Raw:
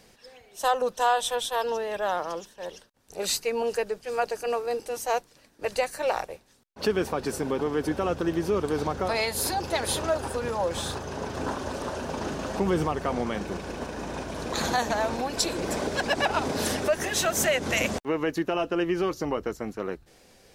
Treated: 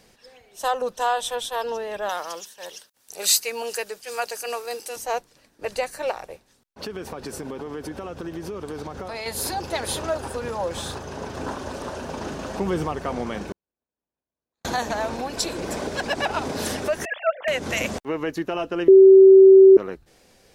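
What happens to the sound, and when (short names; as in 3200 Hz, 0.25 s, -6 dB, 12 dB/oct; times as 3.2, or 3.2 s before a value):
2.09–4.96 tilt +3.5 dB/oct
6.11–9.26 compressor, threshold -29 dBFS
13.52–14.65 gate -22 dBFS, range -59 dB
17.05–17.48 sine-wave speech
18.88–19.77 bleep 384 Hz -6 dBFS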